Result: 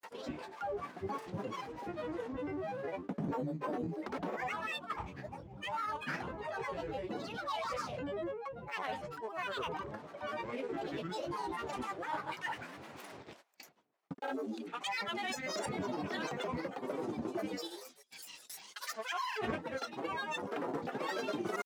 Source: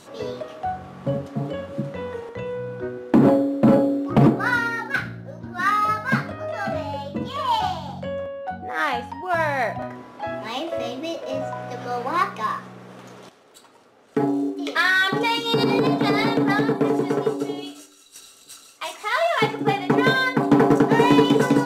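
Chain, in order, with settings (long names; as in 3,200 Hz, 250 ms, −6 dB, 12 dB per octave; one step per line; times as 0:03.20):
noise gate with hold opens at −37 dBFS
low-shelf EQ 200 Hz −11 dB
reversed playback
downward compressor 5 to 1, threshold −31 dBFS, peak gain reduction 16 dB
reversed playback
granular cloud, pitch spread up and down by 12 semitones
level −4 dB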